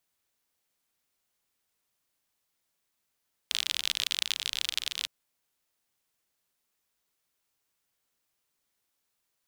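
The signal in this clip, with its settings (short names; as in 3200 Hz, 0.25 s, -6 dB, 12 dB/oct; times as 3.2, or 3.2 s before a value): rain from filtered ticks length 1.56 s, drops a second 45, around 3400 Hz, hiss -30 dB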